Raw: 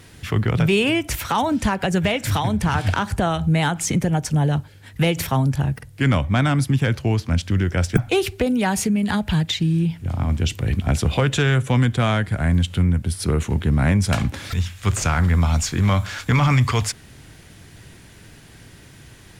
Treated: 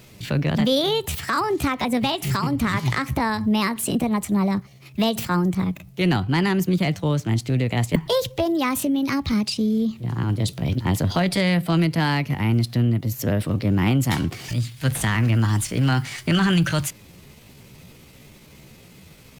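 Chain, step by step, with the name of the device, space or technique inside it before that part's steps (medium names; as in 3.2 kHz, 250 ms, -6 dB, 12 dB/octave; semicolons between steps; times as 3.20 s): chipmunk voice (pitch shift +5 st); trim -2 dB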